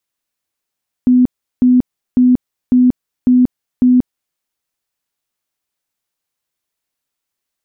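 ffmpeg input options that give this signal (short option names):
-f lavfi -i "aevalsrc='0.501*sin(2*PI*250*mod(t,0.55))*lt(mod(t,0.55),46/250)':d=3.3:s=44100"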